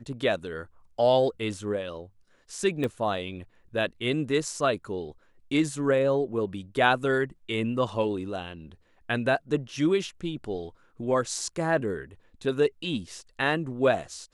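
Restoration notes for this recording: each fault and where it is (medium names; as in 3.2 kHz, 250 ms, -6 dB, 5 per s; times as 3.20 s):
2.84 s: pop -18 dBFS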